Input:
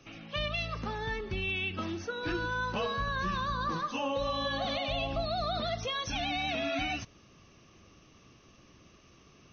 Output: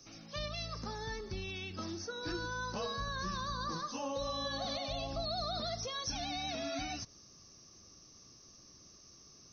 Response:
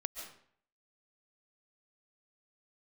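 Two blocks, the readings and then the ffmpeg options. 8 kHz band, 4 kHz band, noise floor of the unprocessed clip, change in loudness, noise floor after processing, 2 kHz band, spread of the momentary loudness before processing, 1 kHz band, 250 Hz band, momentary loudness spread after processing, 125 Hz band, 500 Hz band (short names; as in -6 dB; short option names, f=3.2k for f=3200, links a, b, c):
n/a, -3.5 dB, -59 dBFS, -5.5 dB, -59 dBFS, -9.0 dB, 4 LU, -6.0 dB, -5.5 dB, 19 LU, -5.5 dB, -5.5 dB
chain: -filter_complex "[0:a]highshelf=f=3.9k:t=q:w=3:g=10.5,acrossover=split=5000[a][b];[b]acompressor=threshold=-51dB:ratio=4:attack=1:release=60[c];[a][c]amix=inputs=2:normalize=0,volume=-5.5dB"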